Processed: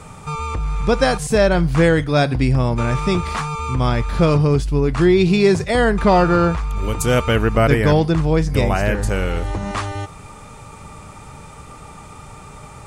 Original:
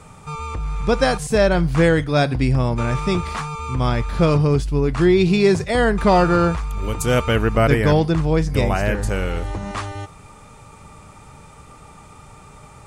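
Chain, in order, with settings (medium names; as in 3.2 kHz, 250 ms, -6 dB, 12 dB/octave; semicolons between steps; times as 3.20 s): in parallel at -2 dB: compression, threshold -28 dBFS, peak gain reduction 16.5 dB; 5.99–6.76 s: on the sum: treble shelf 8.3 kHz -8 dB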